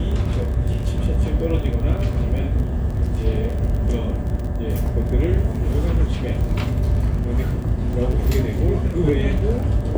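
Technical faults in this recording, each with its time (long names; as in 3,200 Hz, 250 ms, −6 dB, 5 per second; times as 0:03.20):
surface crackle 26 per second −27 dBFS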